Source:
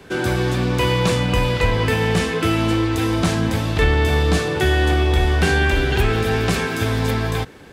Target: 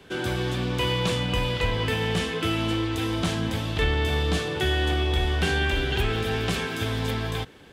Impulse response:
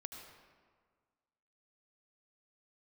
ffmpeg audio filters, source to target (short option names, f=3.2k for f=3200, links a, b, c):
-af "equalizer=f=3.2k:t=o:w=0.48:g=7,volume=-7.5dB"